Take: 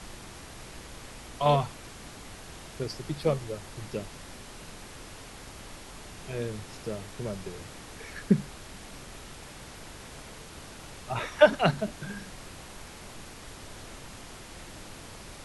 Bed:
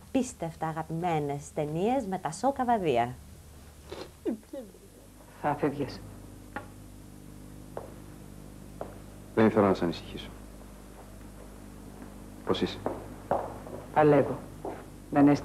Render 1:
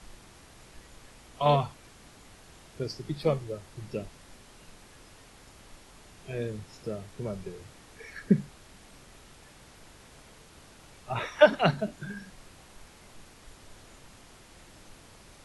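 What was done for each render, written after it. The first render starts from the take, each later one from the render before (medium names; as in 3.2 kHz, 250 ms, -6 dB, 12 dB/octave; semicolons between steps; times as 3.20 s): noise print and reduce 8 dB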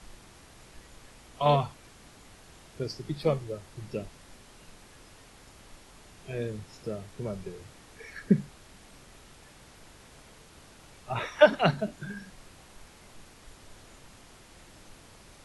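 no audible change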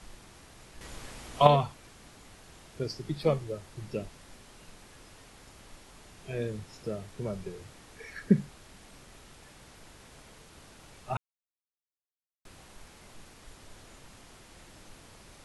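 0.81–1.47 s: gain +7.5 dB; 11.17–12.45 s: mute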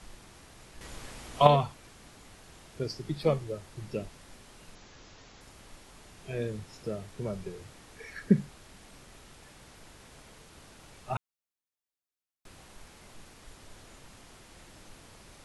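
4.75–5.41 s: careless resampling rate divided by 3×, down none, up filtered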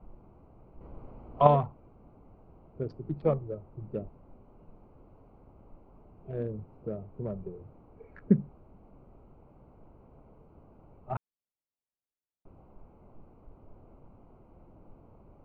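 local Wiener filter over 25 samples; low-pass 1.4 kHz 12 dB/octave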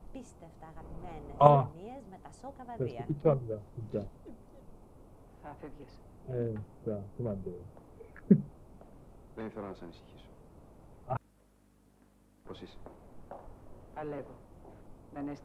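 add bed -19 dB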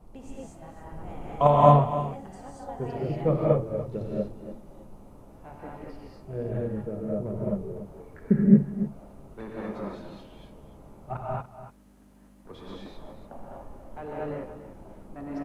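delay 289 ms -13 dB; gated-style reverb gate 260 ms rising, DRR -5.5 dB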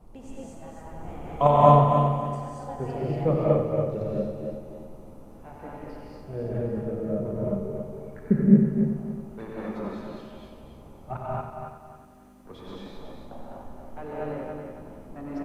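multi-head delay 92 ms, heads first and third, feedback 48%, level -8 dB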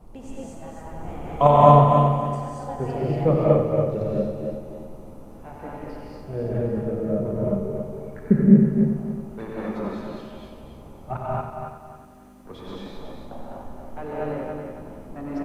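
trim +4 dB; peak limiter -2 dBFS, peak gain reduction 2 dB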